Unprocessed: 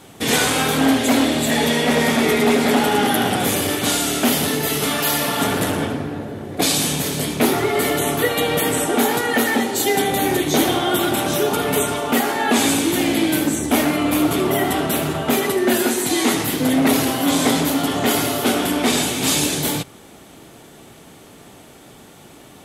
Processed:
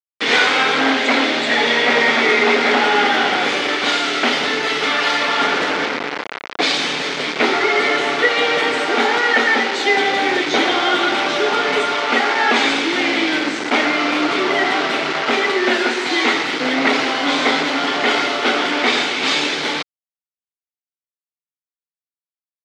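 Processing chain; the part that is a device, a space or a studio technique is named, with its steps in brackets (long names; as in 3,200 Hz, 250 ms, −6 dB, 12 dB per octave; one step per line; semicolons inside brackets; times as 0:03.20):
hand-held game console (bit reduction 4 bits; loudspeaker in its box 410–4,800 Hz, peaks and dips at 640 Hz −3 dB, 1,400 Hz +4 dB, 2,100 Hz +6 dB)
level +3.5 dB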